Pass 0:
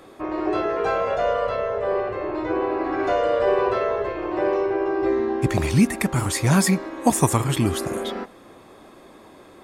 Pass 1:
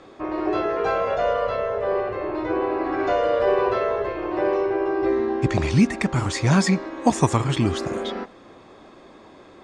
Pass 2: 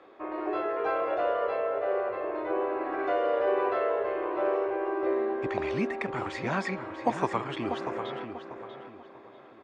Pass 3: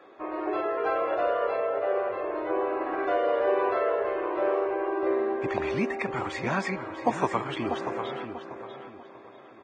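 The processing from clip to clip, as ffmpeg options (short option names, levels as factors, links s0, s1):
-af "lowpass=f=6800:w=0.5412,lowpass=f=6800:w=1.3066"
-filter_complex "[0:a]acrossover=split=300 3300:gain=0.158 1 0.112[s0][s1][s2];[s0][s1][s2]amix=inputs=3:normalize=0,asplit=2[s3][s4];[s4]adelay=641,lowpass=f=3300:p=1,volume=0.398,asplit=2[s5][s6];[s6]adelay=641,lowpass=f=3300:p=1,volume=0.34,asplit=2[s7][s8];[s8]adelay=641,lowpass=f=3300:p=1,volume=0.34,asplit=2[s9][s10];[s10]adelay=641,lowpass=f=3300:p=1,volume=0.34[s11];[s3][s5][s7][s9][s11]amix=inputs=5:normalize=0,volume=0.531"
-af "volume=1.19" -ar 22050 -c:a libvorbis -b:a 16k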